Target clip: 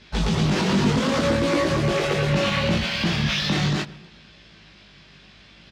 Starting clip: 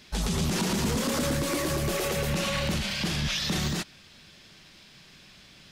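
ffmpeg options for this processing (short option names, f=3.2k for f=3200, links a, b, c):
-filter_complex "[0:a]lowpass=4.1k,asplit=2[a][b];[b]adelay=130,lowpass=f=1.6k:p=1,volume=-16.5dB,asplit=2[c][d];[d]adelay=130,lowpass=f=1.6k:p=1,volume=0.52,asplit=2[e][f];[f]adelay=130,lowpass=f=1.6k:p=1,volume=0.52,asplit=2[g][h];[h]adelay=130,lowpass=f=1.6k:p=1,volume=0.52,asplit=2[i][j];[j]adelay=130,lowpass=f=1.6k:p=1,volume=0.52[k];[c][e][g][i][k]amix=inputs=5:normalize=0[l];[a][l]amix=inputs=2:normalize=0,flanger=delay=17.5:depth=2.8:speed=0.69,highpass=56,asplit=2[m][n];[n]aeval=exprs='sgn(val(0))*max(abs(val(0))-0.00473,0)':c=same,volume=-6dB[o];[m][o]amix=inputs=2:normalize=0,aeval=exprs='val(0)+0.000631*(sin(2*PI*50*n/s)+sin(2*PI*2*50*n/s)/2+sin(2*PI*3*50*n/s)/3+sin(2*PI*4*50*n/s)/4+sin(2*PI*5*50*n/s)/5)':c=same,acontrast=76" -ar 48000 -c:a libvorbis -b:a 192k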